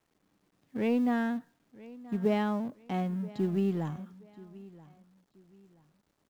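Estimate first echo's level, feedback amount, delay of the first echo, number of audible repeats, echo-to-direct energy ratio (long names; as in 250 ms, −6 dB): −20.0 dB, 31%, 979 ms, 2, −19.5 dB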